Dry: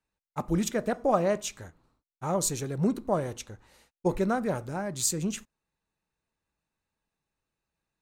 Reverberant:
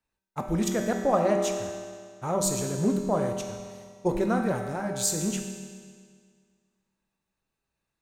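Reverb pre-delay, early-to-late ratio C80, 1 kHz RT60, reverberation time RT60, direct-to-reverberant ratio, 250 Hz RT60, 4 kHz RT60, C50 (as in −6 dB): 5 ms, 6.0 dB, 1.9 s, 1.9 s, 3.0 dB, 1.9 s, 1.8 s, 4.5 dB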